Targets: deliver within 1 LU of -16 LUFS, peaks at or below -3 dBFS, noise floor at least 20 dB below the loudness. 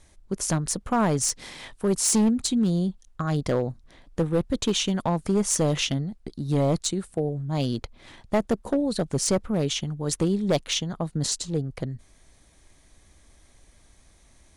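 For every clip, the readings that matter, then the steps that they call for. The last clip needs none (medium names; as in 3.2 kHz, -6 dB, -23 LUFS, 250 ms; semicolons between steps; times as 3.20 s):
clipped samples 1.4%; clipping level -16.5 dBFS; loudness -26.0 LUFS; peak level -16.5 dBFS; loudness target -16.0 LUFS
-> clip repair -16.5 dBFS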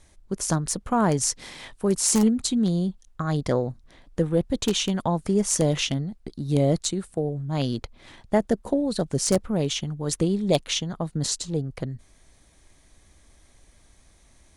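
clipped samples 0.0%; loudness -25.0 LUFS; peak level -7.5 dBFS; loudness target -16.0 LUFS
-> trim +9 dB; peak limiter -3 dBFS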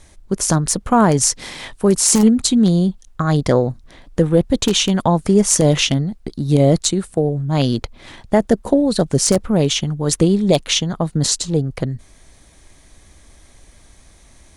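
loudness -16.5 LUFS; peak level -3.0 dBFS; noise floor -49 dBFS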